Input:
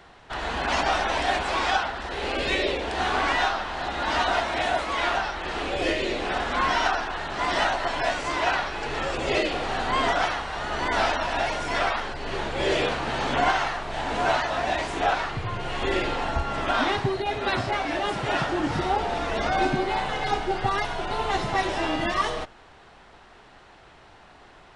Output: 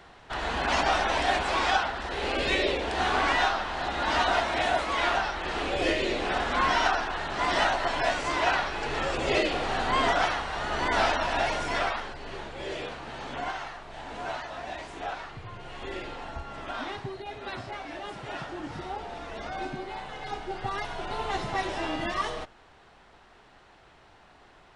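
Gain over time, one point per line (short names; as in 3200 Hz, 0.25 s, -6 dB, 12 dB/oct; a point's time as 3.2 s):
11.59 s -1 dB
12.63 s -11.5 dB
20.1 s -11.5 dB
21.05 s -5 dB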